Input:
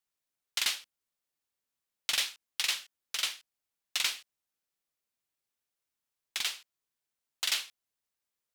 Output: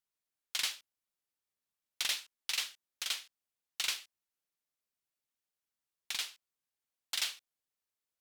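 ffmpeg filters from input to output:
-af "asetrate=45938,aresample=44100,volume=0.631"

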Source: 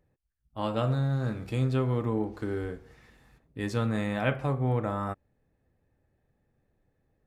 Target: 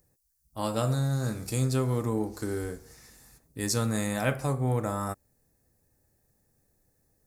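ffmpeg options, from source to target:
-af "aexciter=amount=9:drive=4.3:freq=4600"

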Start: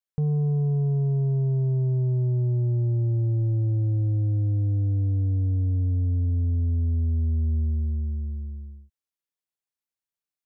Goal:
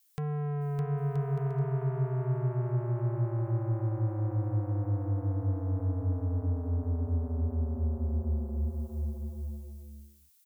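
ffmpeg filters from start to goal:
-filter_complex "[0:a]acompressor=threshold=0.0282:ratio=10,asoftclip=type=tanh:threshold=0.015,crystalizer=i=7:c=0,asplit=2[s0][s1];[s1]aecho=0:1:610|976|1196|1327|1406:0.631|0.398|0.251|0.158|0.1[s2];[s0][s2]amix=inputs=2:normalize=0,volume=1.88"

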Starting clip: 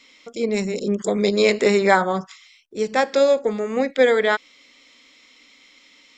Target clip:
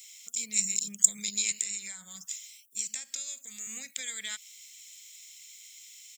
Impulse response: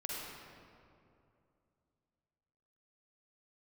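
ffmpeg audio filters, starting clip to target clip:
-filter_complex "[0:a]acompressor=threshold=0.112:ratio=6,highpass=f=110:p=1,asettb=1/sr,asplit=3[s0][s1][s2];[s0]atrim=end=1.514[s3];[s1]atrim=start=1.51:end=3.67,asetpts=PTS-STARTPTS,afade=t=in:d=0.004:c=qsin,afade=t=out:st=2.156:d=0.004:c=qsin,acrossover=split=340|1300[s4][s5][s6];[s4]acompressor=threshold=0.0126:ratio=4[s7];[s5]acompressor=threshold=0.0282:ratio=4[s8];[s6]acompressor=threshold=0.0141:ratio=4[s9];[s7][s8][s9]amix=inputs=3:normalize=0[s10];[s2]atrim=start=3.666[s11];[s3][s10]acrossfade=d=0.004:c1=hsin:c2=qsin[s12];[s12][s11]acrossfade=d=0.004:c1=qsin:c2=hsin,lowshelf=f=360:g=-5,aexciter=amount=7.4:drive=5.3:freq=6800,firequalizer=gain_entry='entry(170,0);entry(340,-27);entry(2400,-2)':delay=0.05:min_phase=1,crystalizer=i=6:c=0,volume=0.282"

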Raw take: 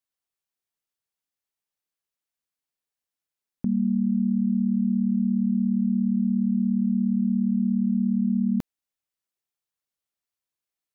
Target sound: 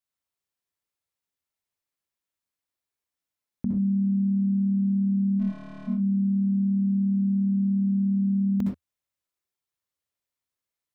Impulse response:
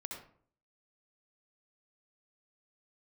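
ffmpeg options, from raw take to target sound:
-filter_complex "[0:a]equalizer=f=81:t=o:w=0.62:g=7.5,asplit=3[s0][s1][s2];[s0]afade=t=out:st=5.39:d=0.02[s3];[s1]aeval=exprs='(tanh(126*val(0)+0.7)-tanh(0.7))/126':c=same,afade=t=in:st=5.39:d=0.02,afade=t=out:st=5.87:d=0.02[s4];[s2]afade=t=in:st=5.87:d=0.02[s5];[s3][s4][s5]amix=inputs=3:normalize=0[s6];[1:a]atrim=start_sample=2205,atrim=end_sample=6174[s7];[s6][s7]afir=irnorm=-1:irlink=0,volume=1.33"

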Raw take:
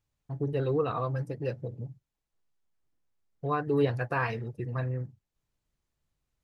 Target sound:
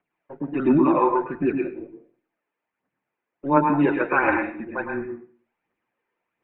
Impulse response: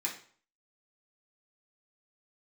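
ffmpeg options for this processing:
-filter_complex "[0:a]aphaser=in_gain=1:out_gain=1:delay=2:decay=0.59:speed=1.4:type=triangular,highpass=f=350:t=q:w=0.5412,highpass=f=350:t=q:w=1.307,lowpass=f=2700:t=q:w=0.5176,lowpass=f=2700:t=q:w=0.7071,lowpass=f=2700:t=q:w=1.932,afreqshift=-140,asplit=2[s0][s1];[1:a]atrim=start_sample=2205,adelay=104[s2];[s1][s2]afir=irnorm=-1:irlink=0,volume=0.531[s3];[s0][s3]amix=inputs=2:normalize=0,volume=2.82"

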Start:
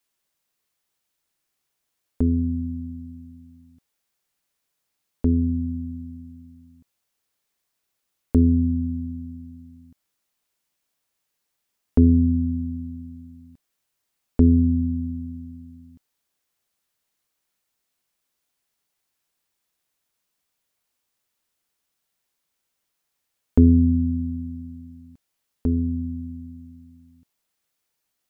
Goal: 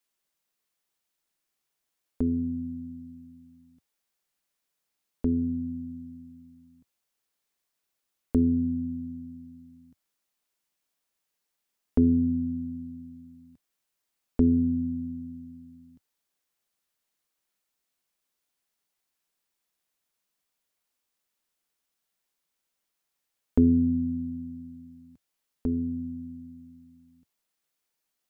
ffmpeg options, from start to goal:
-af "equalizer=f=95:t=o:w=0.41:g=-13.5,volume=0.631"

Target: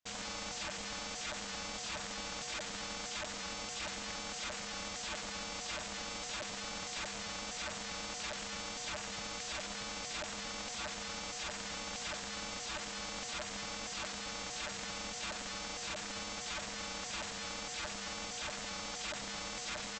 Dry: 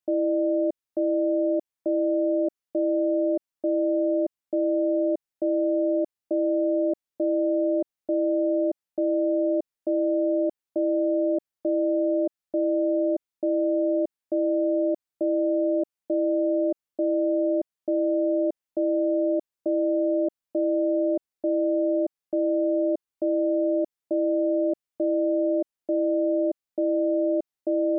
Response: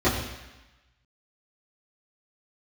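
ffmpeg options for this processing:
-filter_complex "[0:a]asplit=2[s0][s1];[s1]tiltshelf=f=680:g=-4.5[s2];[1:a]atrim=start_sample=2205,adelay=83[s3];[s2][s3]afir=irnorm=-1:irlink=0,volume=0.0708[s4];[s0][s4]amix=inputs=2:normalize=0,asoftclip=type=hard:threshold=0.0376,tremolo=f=130:d=0.261,aresample=16000,aeval=exprs='(mod(63.1*val(0)+1,2)-1)/63.1':c=same,aresample=44100,equalizer=f=390:t=o:w=0.33:g=-12,atempo=1.4,volume=1.26"

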